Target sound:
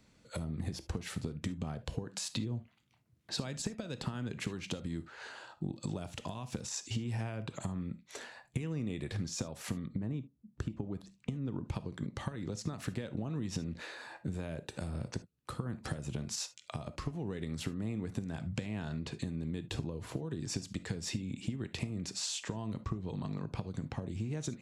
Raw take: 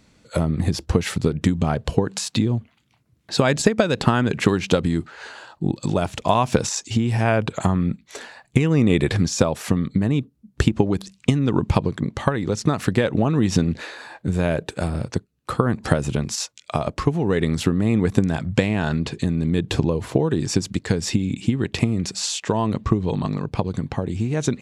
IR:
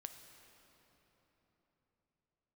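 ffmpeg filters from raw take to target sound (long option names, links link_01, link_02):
-filter_complex "[0:a]acompressor=threshold=-24dB:ratio=6[link_01];[1:a]atrim=start_sample=2205,atrim=end_sample=3528[link_02];[link_01][link_02]afir=irnorm=-1:irlink=0,acrossover=split=300|3000[link_03][link_04][link_05];[link_04]acompressor=threshold=-39dB:ratio=6[link_06];[link_03][link_06][link_05]amix=inputs=3:normalize=0,asplit=3[link_07][link_08][link_09];[link_07]afade=type=out:start_time=9.85:duration=0.02[link_10];[link_08]highshelf=frequency=2000:gain=-11,afade=type=in:start_time=9.85:duration=0.02,afade=type=out:start_time=11.64:duration=0.02[link_11];[link_09]afade=type=in:start_time=11.64:duration=0.02[link_12];[link_10][link_11][link_12]amix=inputs=3:normalize=0,volume=-3.5dB"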